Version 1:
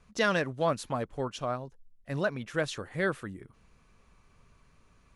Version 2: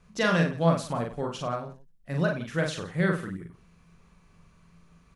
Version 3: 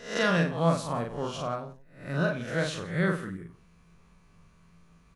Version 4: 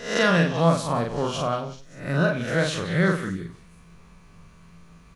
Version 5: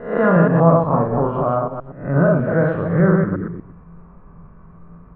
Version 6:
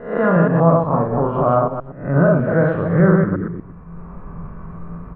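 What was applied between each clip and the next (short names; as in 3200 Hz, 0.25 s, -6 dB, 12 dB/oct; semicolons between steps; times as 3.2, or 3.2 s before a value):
bell 170 Hz +13.5 dB 0.21 oct; on a send: tapped delay 42/94/169 ms -3/-12.5/-19.5 dB
spectral swells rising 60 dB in 0.48 s; gain -2.5 dB
in parallel at -2 dB: compressor, threshold -33 dBFS, peak gain reduction 14.5 dB; on the sum: delay with a stepping band-pass 0.192 s, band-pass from 3100 Hz, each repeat 0.7 oct, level -10 dB; gain +3.5 dB
reverse delay 0.12 s, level -3.5 dB; LPF 1300 Hz 24 dB/oct; gain +6 dB
AGC gain up to 11.5 dB; gain -1 dB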